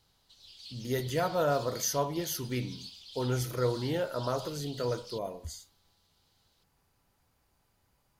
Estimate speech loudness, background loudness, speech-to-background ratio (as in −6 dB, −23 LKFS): −32.5 LKFS, −46.5 LKFS, 14.0 dB